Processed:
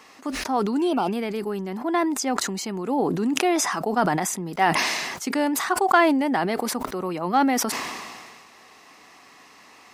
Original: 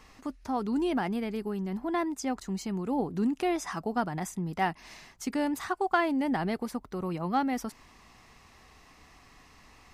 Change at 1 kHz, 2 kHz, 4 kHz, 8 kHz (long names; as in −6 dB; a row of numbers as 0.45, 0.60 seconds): +9.0, +10.0, +13.5, +15.5 decibels